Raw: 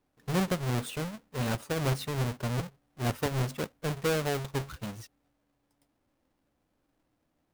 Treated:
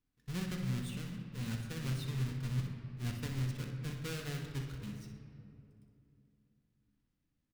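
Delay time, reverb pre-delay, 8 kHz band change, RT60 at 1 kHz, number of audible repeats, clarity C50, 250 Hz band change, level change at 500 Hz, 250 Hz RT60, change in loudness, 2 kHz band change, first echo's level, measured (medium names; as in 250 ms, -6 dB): 62 ms, 3 ms, -9.5 dB, 2.4 s, 1, 3.5 dB, -6.5 dB, -16.5 dB, 3.6 s, -7.0 dB, -10.0 dB, -9.5 dB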